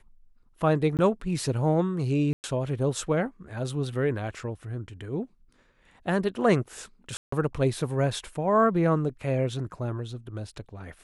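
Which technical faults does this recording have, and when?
0.97–0.99 gap 18 ms
2.33–2.44 gap 0.109 s
7.17–7.32 gap 0.154 s

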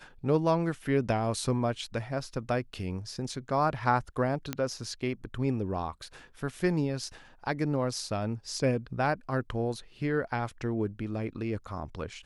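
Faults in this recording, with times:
4.53 pop -15 dBFS

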